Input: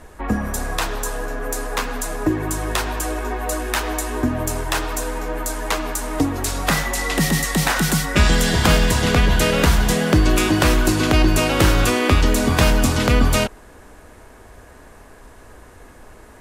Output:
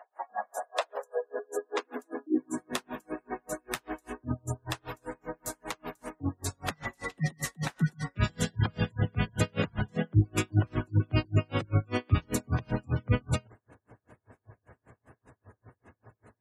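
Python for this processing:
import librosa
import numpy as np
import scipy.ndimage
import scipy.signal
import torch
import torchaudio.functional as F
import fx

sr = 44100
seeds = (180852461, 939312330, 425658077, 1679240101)

y = fx.filter_sweep_highpass(x, sr, from_hz=730.0, to_hz=110.0, start_s=0.42, end_s=4.03, q=5.5)
y = fx.spec_gate(y, sr, threshold_db=-25, keep='strong')
y = y * 10.0 ** (-39 * (0.5 - 0.5 * np.cos(2.0 * np.pi * 5.1 * np.arange(len(y)) / sr)) / 20.0)
y = F.gain(torch.from_numpy(y), -7.5).numpy()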